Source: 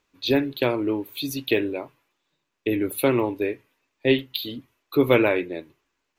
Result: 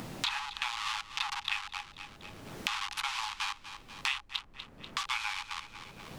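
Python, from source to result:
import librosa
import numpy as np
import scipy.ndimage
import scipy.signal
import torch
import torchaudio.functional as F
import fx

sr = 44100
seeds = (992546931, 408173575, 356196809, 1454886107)

p1 = fx.delta_hold(x, sr, step_db=-21.0)
p2 = scipy.signal.sosfilt(scipy.signal.butter(2, 6300.0, 'lowpass', fs=sr, output='sos'), p1)
p3 = fx.rider(p2, sr, range_db=10, speed_s=0.5)
p4 = scipy.signal.sosfilt(scipy.signal.cheby1(6, 6, 800.0, 'highpass', fs=sr, output='sos'), p3)
p5 = fx.dmg_noise_colour(p4, sr, seeds[0], colour='brown', level_db=-59.0)
p6 = p5 + fx.echo_feedback(p5, sr, ms=243, feedback_pct=28, wet_db=-17.0, dry=0)
y = fx.band_squash(p6, sr, depth_pct=100)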